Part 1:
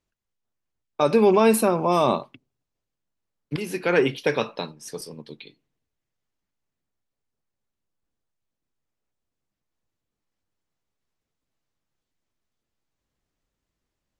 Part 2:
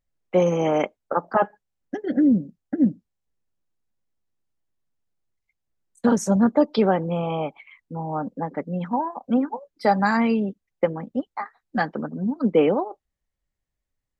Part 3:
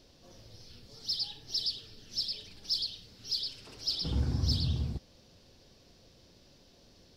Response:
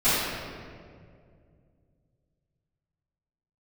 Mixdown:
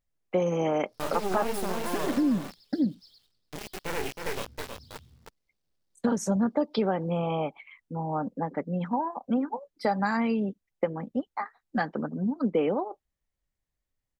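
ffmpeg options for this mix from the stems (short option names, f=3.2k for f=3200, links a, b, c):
-filter_complex "[0:a]flanger=delay=19.5:depth=7.9:speed=2.6,aeval=exprs='max(val(0),0)':c=same,acrusher=bits=4:mix=0:aa=0.000001,volume=-5.5dB,asplit=2[a][b];[b]volume=-5.5dB[c];[1:a]volume=-2dB,asplit=2[d][e];[2:a]adynamicequalizer=threshold=0.001:dfrequency=860:dqfactor=1.1:tfrequency=860:tqfactor=1.1:attack=5:release=100:ratio=0.375:range=2:mode=cutabove:tftype=bell,acrusher=bits=8:dc=4:mix=0:aa=0.000001,volume=-17.5dB,asplit=2[f][g];[g]volume=-7.5dB[h];[e]apad=whole_len=315815[i];[f][i]sidechaingate=range=-33dB:threshold=-51dB:ratio=16:detection=peak[j];[c][h]amix=inputs=2:normalize=0,aecho=0:1:318:1[k];[a][d][j][k]amix=inputs=4:normalize=0,acompressor=threshold=-24dB:ratio=2.5"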